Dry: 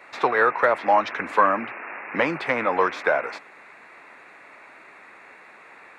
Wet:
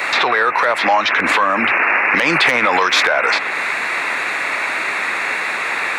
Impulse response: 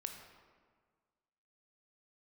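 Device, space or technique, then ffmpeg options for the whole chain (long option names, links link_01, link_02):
mastering chain: -filter_complex "[0:a]equalizer=frequency=3800:width_type=o:width=0.44:gain=2.5,acrossover=split=770|4000[link_01][link_02][link_03];[link_01]acompressor=threshold=-36dB:ratio=4[link_04];[link_02]acompressor=threshold=-32dB:ratio=4[link_05];[link_03]acompressor=threshold=-59dB:ratio=4[link_06];[link_04][link_05][link_06]amix=inputs=3:normalize=0,acompressor=threshold=-38dB:ratio=1.5,asoftclip=type=tanh:threshold=-19.5dB,tiltshelf=frequency=1500:gain=-5.5,asoftclip=type=hard:threshold=-23dB,alimiter=level_in=31dB:limit=-1dB:release=50:level=0:latency=1,asettb=1/sr,asplit=3[link_07][link_08][link_09];[link_07]atrim=end=2.164[link_10];[link_08]atrim=start=2.16:end=3.07,asetpts=PTS-STARTPTS,afade=type=in:duration=0.004:curve=qsin,afade=type=out:start_time=0.906:duration=0.004:curve=qsin,highshelf=frequency=4900:gain=10[link_11];[link_09]atrim=start=3.066[link_12];[link_10][link_11]acrossfade=duration=0.004:curve1=hsin:curve2=qsin[link_13];[link_13][link_12]acrossfade=duration=0.004:curve1=qsin:curve2=hsin,volume=-4.5dB"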